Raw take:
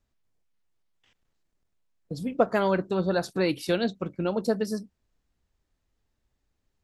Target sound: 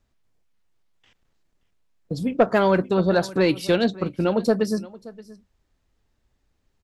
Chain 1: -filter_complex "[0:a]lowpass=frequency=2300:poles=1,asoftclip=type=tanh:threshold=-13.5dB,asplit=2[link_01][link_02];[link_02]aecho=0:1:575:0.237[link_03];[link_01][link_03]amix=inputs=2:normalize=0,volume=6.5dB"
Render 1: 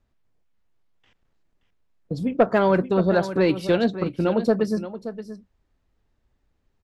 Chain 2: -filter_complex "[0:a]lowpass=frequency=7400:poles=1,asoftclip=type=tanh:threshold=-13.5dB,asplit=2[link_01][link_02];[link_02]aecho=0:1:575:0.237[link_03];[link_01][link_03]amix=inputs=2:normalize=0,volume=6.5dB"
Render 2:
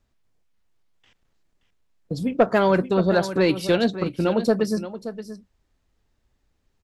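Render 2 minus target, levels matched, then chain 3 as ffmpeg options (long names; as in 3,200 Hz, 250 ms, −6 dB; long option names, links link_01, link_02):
echo-to-direct +7.5 dB
-filter_complex "[0:a]lowpass=frequency=7400:poles=1,asoftclip=type=tanh:threshold=-13.5dB,asplit=2[link_01][link_02];[link_02]aecho=0:1:575:0.1[link_03];[link_01][link_03]amix=inputs=2:normalize=0,volume=6.5dB"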